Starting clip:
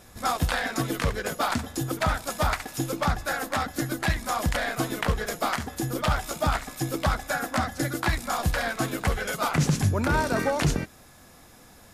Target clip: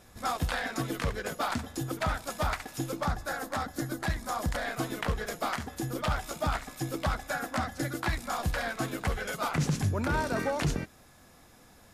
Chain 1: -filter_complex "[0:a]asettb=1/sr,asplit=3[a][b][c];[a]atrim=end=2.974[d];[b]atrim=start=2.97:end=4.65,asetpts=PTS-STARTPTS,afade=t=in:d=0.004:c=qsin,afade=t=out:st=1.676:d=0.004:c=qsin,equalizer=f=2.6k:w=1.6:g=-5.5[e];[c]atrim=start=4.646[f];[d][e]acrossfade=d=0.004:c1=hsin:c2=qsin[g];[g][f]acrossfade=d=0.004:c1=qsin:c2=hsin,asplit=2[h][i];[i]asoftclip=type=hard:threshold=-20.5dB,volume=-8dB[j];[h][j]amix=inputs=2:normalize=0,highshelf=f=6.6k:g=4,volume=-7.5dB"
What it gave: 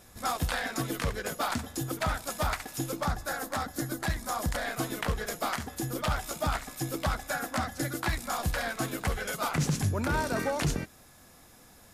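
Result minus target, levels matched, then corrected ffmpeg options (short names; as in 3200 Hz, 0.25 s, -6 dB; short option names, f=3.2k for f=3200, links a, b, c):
8000 Hz band +3.5 dB
-filter_complex "[0:a]asettb=1/sr,asplit=3[a][b][c];[a]atrim=end=2.974[d];[b]atrim=start=2.97:end=4.65,asetpts=PTS-STARTPTS,afade=t=in:d=0.004:c=qsin,afade=t=out:st=1.676:d=0.004:c=qsin,equalizer=f=2.6k:w=1.6:g=-5.5[e];[c]atrim=start=4.646[f];[d][e]acrossfade=d=0.004:c1=hsin:c2=qsin[g];[g][f]acrossfade=d=0.004:c1=qsin:c2=hsin,asplit=2[h][i];[i]asoftclip=type=hard:threshold=-20.5dB,volume=-8dB[j];[h][j]amix=inputs=2:normalize=0,highshelf=f=6.6k:g=-3,volume=-7.5dB"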